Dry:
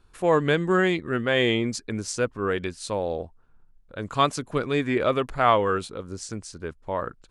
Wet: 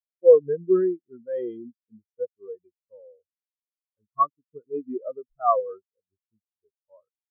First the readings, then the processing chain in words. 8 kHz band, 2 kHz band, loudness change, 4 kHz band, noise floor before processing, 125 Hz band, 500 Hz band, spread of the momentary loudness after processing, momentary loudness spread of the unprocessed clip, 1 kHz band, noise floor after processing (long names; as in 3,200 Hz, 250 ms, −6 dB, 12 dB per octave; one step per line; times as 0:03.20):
below −40 dB, below −25 dB, +1.0 dB, below −40 dB, −56 dBFS, below −15 dB, +1.5 dB, 24 LU, 15 LU, −2.5 dB, below −85 dBFS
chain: every bin expanded away from the loudest bin 4 to 1
level +2 dB